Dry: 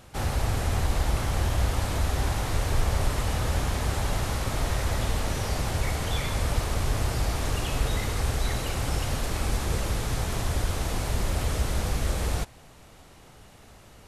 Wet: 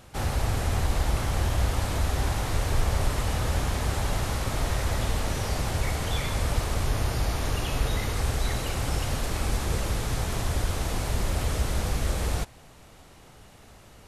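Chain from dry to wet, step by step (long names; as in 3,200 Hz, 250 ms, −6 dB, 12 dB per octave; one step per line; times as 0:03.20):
0:06.86–0:08.14: notch filter 7,900 Hz, Q 6.9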